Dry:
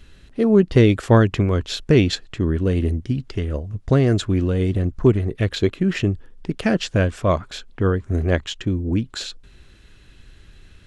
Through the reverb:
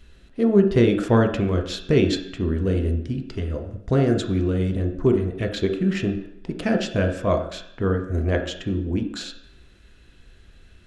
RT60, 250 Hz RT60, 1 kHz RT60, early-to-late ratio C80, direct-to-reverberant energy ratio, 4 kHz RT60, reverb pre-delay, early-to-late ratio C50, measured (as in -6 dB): 0.70 s, 0.75 s, 0.75 s, 11.0 dB, 3.0 dB, 0.75 s, 3 ms, 8.0 dB